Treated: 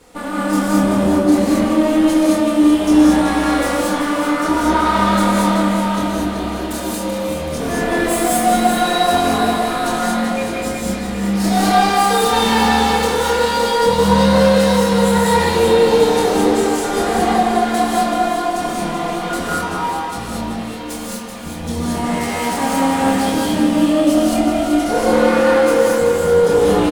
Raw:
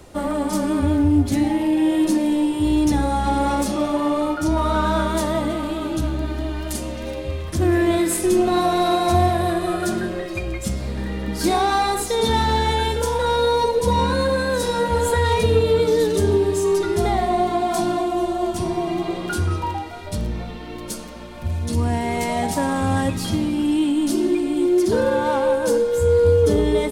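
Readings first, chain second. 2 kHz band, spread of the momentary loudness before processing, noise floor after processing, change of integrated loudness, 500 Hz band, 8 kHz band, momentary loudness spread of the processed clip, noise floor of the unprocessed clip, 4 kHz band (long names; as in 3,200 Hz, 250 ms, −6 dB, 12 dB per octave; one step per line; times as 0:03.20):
+7.5 dB, 10 LU, −26 dBFS, +4.5 dB, +4.0 dB, +6.0 dB, 9 LU, −32 dBFS, +6.0 dB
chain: lower of the sound and its delayed copy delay 4.1 ms
low-shelf EQ 110 Hz −9.5 dB
double-tracking delay 26 ms −3.5 dB
delay that swaps between a low-pass and a high-pass 191 ms, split 1,400 Hz, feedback 73%, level −4.5 dB
reverb whose tail is shaped and stops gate 250 ms rising, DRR −3.5 dB
level −1 dB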